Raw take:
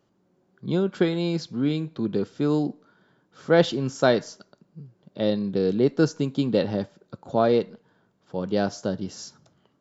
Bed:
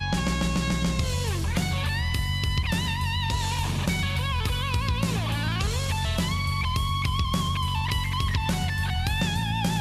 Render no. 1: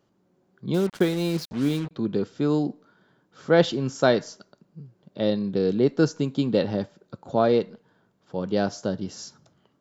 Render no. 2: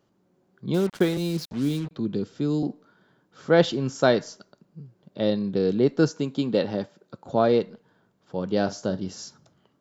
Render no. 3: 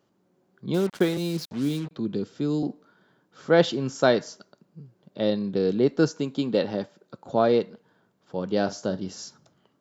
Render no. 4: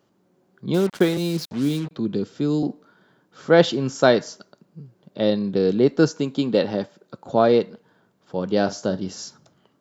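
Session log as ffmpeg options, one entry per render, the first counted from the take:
-filter_complex "[0:a]asettb=1/sr,asplit=3[a][b][c];[a]atrim=end=0.744[d];[b]atrim=start=0.74:end=1.91,asetpts=PTS-STARTPTS,afade=t=in:d=0.004:c=qsin,afade=t=out:st=1.166:d=0.004:c=qsin,acrusher=bits=5:mix=0:aa=0.5[e];[c]atrim=start=1.906[f];[d][e]acrossfade=d=0.004:c1=hsin:c2=qsin[g];[g][f]acrossfade=d=0.004:c1=qsin:c2=hsin"
-filter_complex "[0:a]asettb=1/sr,asplit=3[a][b][c];[a]atrim=end=1.174[d];[b]atrim=start=1.17:end=2.63,asetpts=PTS-STARTPTS,afade=t=in:d=0.004:c=qsin,afade=t=out:st=1.456:d=0.004:c=qsin,acrossover=split=380|3000[e][f][g];[f]acompressor=threshold=-45dB:ratio=2:attack=3.2:release=140:knee=2.83:detection=peak[h];[e][h][g]amix=inputs=3:normalize=0[i];[c]atrim=start=2.626[j];[d][i]acrossfade=d=0.004:c1=hsin:c2=qsin[k];[k][j]acrossfade=d=0.004:c1=qsin:c2=hsin,asettb=1/sr,asplit=3[l][m][n];[l]atrim=end=6.104[o];[m]atrim=start=6.1:end=7.26,asetpts=PTS-STARTPTS,afade=t=in:d=0.004:c=qsin,afade=t=out:st=1.156:d=0.004:c=qsin,highpass=f=170:p=1[p];[n]atrim=start=7.256[q];[o][p]acrossfade=d=0.004:c1=hsin:c2=qsin[r];[r][q]acrossfade=d=0.004:c1=qsin:c2=hsin,asettb=1/sr,asplit=3[s][t][u];[s]atrim=end=8.494[v];[t]atrim=start=8.49:end=9.16,asetpts=PTS-STARTPTS,afade=t=in:d=0.004:c=qsin,afade=t=out:st=0.666:d=0.004:c=qsin,asplit=2[w][x];[x]adelay=43,volume=-13dB[y];[w][y]amix=inputs=2:normalize=0,atrim=end_sample=29547[z];[u]atrim=start=9.156[aa];[v][z]acrossfade=d=0.004:c1=hsin:c2=qsin[ab];[ab][aa]acrossfade=d=0.004:c1=qsin:c2=hsin"
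-af "lowshelf=f=75:g=-11"
-af "volume=4dB"

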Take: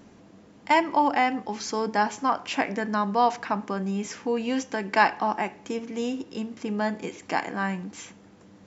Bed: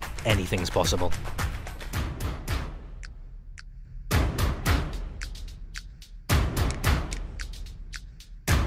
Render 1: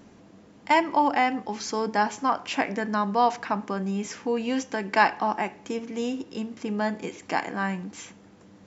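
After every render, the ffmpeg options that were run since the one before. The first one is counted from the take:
-af anull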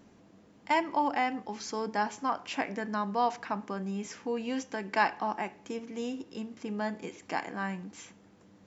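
-af "volume=-6.5dB"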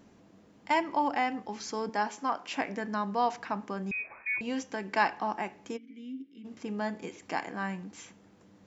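-filter_complex "[0:a]asettb=1/sr,asplit=3[a][b][c];[a]atrim=end=1.894[d];[b]atrim=start=1.89:end=2.56,asetpts=PTS-STARTPTS,afade=t=in:d=0.004:c=qsin,afade=t=out:st=0.666:d=0.004:c=qsin,highpass=200[e];[c]atrim=start=2.556[f];[d][e]acrossfade=d=0.004:c1=hsin:c2=qsin[g];[g][f]acrossfade=d=0.004:c1=qsin:c2=hsin,asettb=1/sr,asplit=3[h][i][j];[h]atrim=end=3.914[k];[i]atrim=start=3.91:end=4.41,asetpts=PTS-STARTPTS,afade=t=in:d=0.004:c=qsin,afade=t=out:st=0.496:d=0.004:c=qsin,lowpass=f=2.3k:t=q:w=0.5098,lowpass=f=2.3k:t=q:w=0.6013,lowpass=f=2.3k:t=q:w=0.9,lowpass=f=2.3k:t=q:w=2.563,afreqshift=-2700[l];[j]atrim=start=4.406[m];[k][l]acrossfade=d=0.004:c1=hsin:c2=qsin[n];[n][m]acrossfade=d=0.004:c1=qsin:c2=hsin,asplit=3[o][p][q];[o]afade=t=out:st=5.76:d=0.02[r];[p]asplit=3[s][t][u];[s]bandpass=f=270:t=q:w=8,volume=0dB[v];[t]bandpass=f=2.29k:t=q:w=8,volume=-6dB[w];[u]bandpass=f=3.01k:t=q:w=8,volume=-9dB[x];[v][w][x]amix=inputs=3:normalize=0,afade=t=in:st=5.76:d=0.02,afade=t=out:st=6.44:d=0.02[y];[q]afade=t=in:st=6.44:d=0.02[z];[r][y][z]amix=inputs=3:normalize=0"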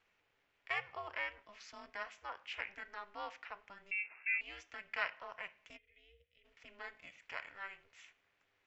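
-af "bandpass=f=2.3k:t=q:w=2.1:csg=0,aeval=exprs='val(0)*sin(2*PI*200*n/s)':c=same"

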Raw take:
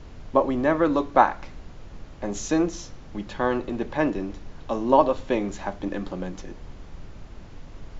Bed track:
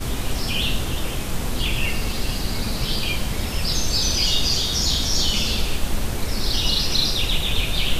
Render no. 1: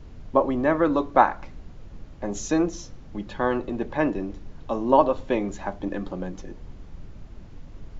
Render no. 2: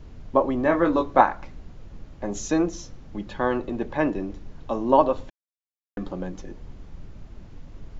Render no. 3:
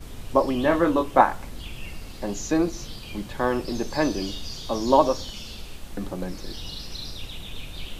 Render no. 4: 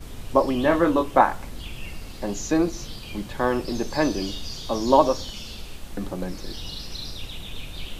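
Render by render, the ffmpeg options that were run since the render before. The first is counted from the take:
-af "afftdn=nr=6:nf=-43"
-filter_complex "[0:a]asettb=1/sr,asplit=3[a][b][c];[a]atrim=end=0.634[d];[b]atrim=start=0.63:end=1.21,asetpts=PTS-STARTPTS,afade=t=in:d=0.004:c=qsin,afade=t=out:st=0.576:d=0.004:c=qsin,asplit=2[e][f];[f]adelay=23,volume=-4.5dB[g];[e][g]amix=inputs=2:normalize=0,atrim=end_sample=25578[h];[c]atrim=start=1.206[i];[d][h]acrossfade=d=0.004:c1=hsin:c2=qsin[j];[j][i]acrossfade=d=0.004:c1=qsin:c2=hsin,asplit=3[k][l][m];[k]atrim=end=5.3,asetpts=PTS-STARTPTS,afade=t=out:st=5.296:d=0.004:c=hsin[n];[l]atrim=start=5.3:end=5.97,asetpts=PTS-STARTPTS,volume=0[o];[m]atrim=start=5.97,asetpts=PTS-STARTPTS,afade=t=in:d=0.004:c=hsin[p];[n][o][p]concat=n=3:v=0:a=1"
-filter_complex "[1:a]volume=-16dB[a];[0:a][a]amix=inputs=2:normalize=0"
-af "volume=1dB,alimiter=limit=-3dB:level=0:latency=1"

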